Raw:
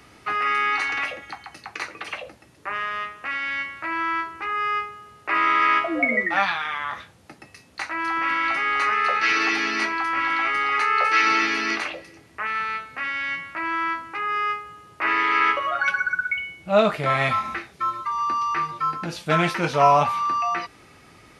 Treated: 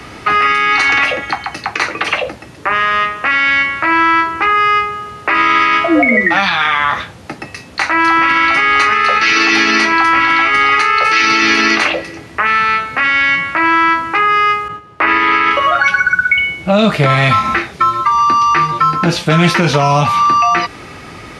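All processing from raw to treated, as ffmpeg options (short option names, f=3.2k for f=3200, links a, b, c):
-filter_complex "[0:a]asettb=1/sr,asplit=3[a][b][c];[a]atrim=end=14.684[d];[b]atrim=start=14.68:end=15.51,asetpts=PTS-STARTPTS,afade=t=in:d=0.004:c=qsin,afade=t=out:st=0.826:d=0.004:c=qsin,agate=range=-9dB:threshold=-45dB:ratio=16:release=100:detection=peak,highshelf=f=4.2k:g=-10.5[e];[c]atrim=start=15.506[f];[d][e]acrossfade=d=0.004:c1=hsin:c2=qsin[g];[g][f]acrossfade=d=0.004:c1=qsin:c2=hsin,highshelf=f=9k:g=-11.5,acrossover=split=260|3000[h][i][j];[i]acompressor=threshold=-28dB:ratio=6[k];[h][k][j]amix=inputs=3:normalize=0,alimiter=level_in=19.5dB:limit=-1dB:release=50:level=0:latency=1,volume=-1dB"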